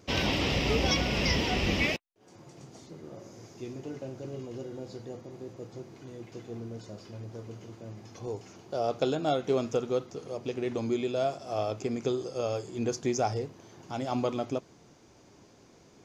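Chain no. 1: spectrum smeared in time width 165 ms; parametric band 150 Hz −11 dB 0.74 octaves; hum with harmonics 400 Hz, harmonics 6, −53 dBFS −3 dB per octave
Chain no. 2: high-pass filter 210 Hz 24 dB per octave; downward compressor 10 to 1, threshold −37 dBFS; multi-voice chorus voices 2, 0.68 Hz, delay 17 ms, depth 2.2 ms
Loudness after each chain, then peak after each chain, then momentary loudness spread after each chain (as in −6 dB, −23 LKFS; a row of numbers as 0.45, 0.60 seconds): −35.0, −45.5 LKFS; −17.5, −29.0 dBFS; 20, 14 LU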